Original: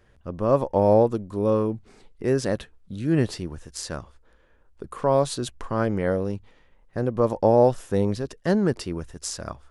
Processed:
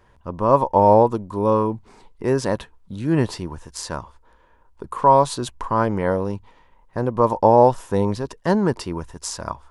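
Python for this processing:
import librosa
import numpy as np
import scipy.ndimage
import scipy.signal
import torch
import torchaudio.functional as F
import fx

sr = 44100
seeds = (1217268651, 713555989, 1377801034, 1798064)

y = fx.peak_eq(x, sr, hz=960.0, db=14.0, octaves=0.37)
y = F.gain(torch.from_numpy(y), 2.0).numpy()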